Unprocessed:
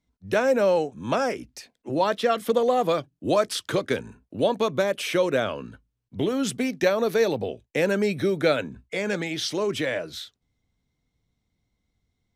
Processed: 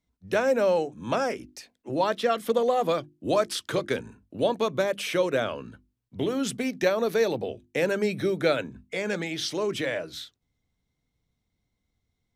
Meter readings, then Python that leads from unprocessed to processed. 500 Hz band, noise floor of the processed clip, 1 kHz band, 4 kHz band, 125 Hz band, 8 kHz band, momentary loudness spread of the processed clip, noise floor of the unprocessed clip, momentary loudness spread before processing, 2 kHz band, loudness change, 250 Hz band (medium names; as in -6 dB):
-2.0 dB, -80 dBFS, -2.0 dB, -2.0 dB, -3.0 dB, -2.0 dB, 10 LU, -79 dBFS, 10 LU, -2.0 dB, -2.0 dB, -3.0 dB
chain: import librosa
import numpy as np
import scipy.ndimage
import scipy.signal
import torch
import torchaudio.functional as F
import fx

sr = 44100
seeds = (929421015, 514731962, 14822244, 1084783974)

y = fx.hum_notches(x, sr, base_hz=50, count=7)
y = F.gain(torch.from_numpy(y), -2.0).numpy()